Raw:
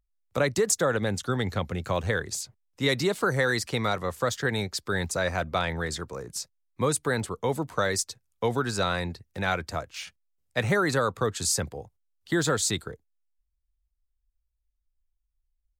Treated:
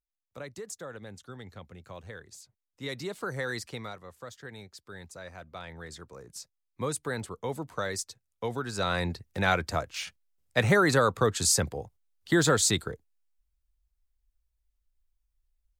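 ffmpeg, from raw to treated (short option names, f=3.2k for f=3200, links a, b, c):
-af "volume=11dB,afade=t=in:st=2.32:d=1.26:silence=0.354813,afade=t=out:st=3.58:d=0.42:silence=0.354813,afade=t=in:st=5.47:d=1.37:silence=0.298538,afade=t=in:st=8.71:d=0.4:silence=0.375837"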